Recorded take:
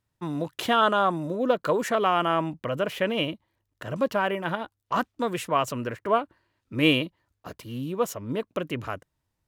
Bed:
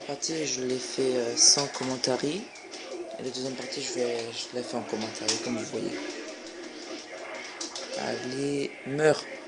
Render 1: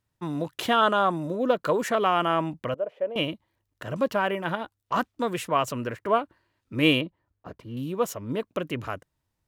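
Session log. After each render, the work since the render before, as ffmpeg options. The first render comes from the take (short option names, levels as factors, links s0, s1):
-filter_complex "[0:a]asettb=1/sr,asplit=3[s0][s1][s2];[s0]atrim=end=2.744[s3];[s1]atrim=start=2.74:end=3.16,asetpts=PTS-STARTPTS,afade=t=in:d=0.004:c=qsin,afade=t=out:st=0.416:d=0.004:c=qsin,bandpass=f=570:t=q:w=3.5[s4];[s2]atrim=start=3.156[s5];[s3][s4]acrossfade=d=0.004:c1=hsin:c2=qsin[s6];[s6][s5]acrossfade=d=0.004:c1=qsin:c2=hsin,asettb=1/sr,asplit=3[s7][s8][s9];[s7]atrim=end=7.014[s10];[s8]atrim=start=7.01:end=7.77,asetpts=PTS-STARTPTS,afade=t=in:d=0.004:c=qsin,afade=t=out:st=0.756:d=0.004:c=qsin,lowpass=f=1100:p=1[s11];[s9]atrim=start=7.766[s12];[s10][s11]acrossfade=d=0.004:c1=hsin:c2=qsin[s13];[s13][s12]acrossfade=d=0.004:c1=qsin:c2=hsin"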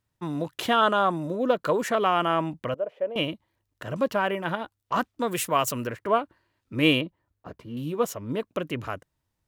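-filter_complex "[0:a]asettb=1/sr,asplit=3[s0][s1][s2];[s0]atrim=end=5.314[s3];[s1]atrim=start=5.31:end=5.87,asetpts=PTS-STARTPTS,afade=t=in:d=0.004:c=qsin,afade=t=out:st=0.556:d=0.004:c=qsin,aemphasis=mode=production:type=50kf[s4];[s2]atrim=start=5.866[s5];[s3][s4]acrossfade=d=0.004:c1=hsin:c2=qsin[s6];[s6][s5]acrossfade=d=0.004:c1=qsin:c2=hsin,asettb=1/sr,asplit=3[s7][s8][s9];[s7]atrim=end=7.564[s10];[s8]atrim=start=7.56:end=8.05,asetpts=PTS-STARTPTS,afade=t=in:d=0.004:c=qsin,afade=t=out:st=0.486:d=0.004:c=qsin,asplit=2[s11][s12];[s12]adelay=13,volume=0.376[s13];[s11][s13]amix=inputs=2:normalize=0,atrim=end_sample=21609[s14];[s9]atrim=start=8.046[s15];[s10][s14]acrossfade=d=0.004:c1=hsin:c2=qsin[s16];[s16][s15]acrossfade=d=0.004:c1=qsin:c2=hsin"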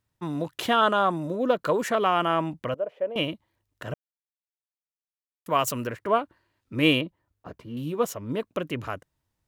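-filter_complex "[0:a]asplit=3[s0][s1][s2];[s0]atrim=end=3.94,asetpts=PTS-STARTPTS,afade=t=out:st=3.936:d=0.004:c=hsin[s3];[s1]atrim=start=3.94:end=5.46,asetpts=PTS-STARTPTS,volume=0[s4];[s2]atrim=start=5.46,asetpts=PTS-STARTPTS,afade=t=in:d=0.004:c=hsin[s5];[s3][s4][s5]concat=n=3:v=0:a=1"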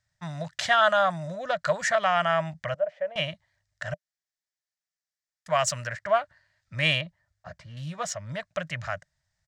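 -af "firequalizer=gain_entry='entry(170,0);entry(240,-20);entry(420,-25);entry(600,4);entry(990,-6);entry(1800,10);entry(2600,-2);entry(5000,8);entry(7800,4);entry(12000,-19)':delay=0.05:min_phase=1"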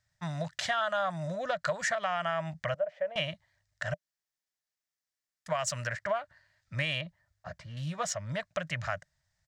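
-af "alimiter=limit=0.168:level=0:latency=1:release=226,acompressor=threshold=0.0398:ratio=3"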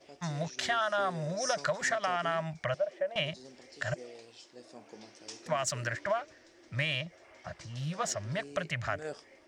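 -filter_complex "[1:a]volume=0.119[s0];[0:a][s0]amix=inputs=2:normalize=0"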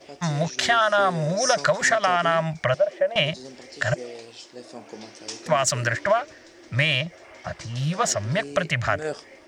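-af "volume=3.35"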